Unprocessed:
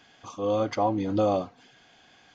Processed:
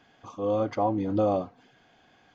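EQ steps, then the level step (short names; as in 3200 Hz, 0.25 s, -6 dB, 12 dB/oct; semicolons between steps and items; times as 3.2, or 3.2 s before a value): high shelf 2300 Hz -11 dB; 0.0 dB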